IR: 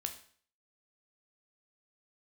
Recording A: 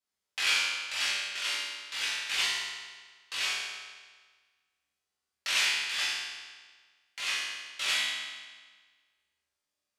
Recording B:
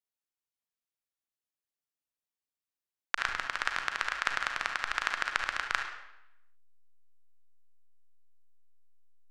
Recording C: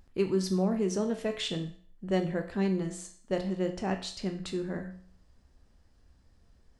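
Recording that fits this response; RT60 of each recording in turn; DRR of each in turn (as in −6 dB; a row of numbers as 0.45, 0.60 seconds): C; 1.5, 0.85, 0.50 seconds; −10.0, 3.0, 5.0 decibels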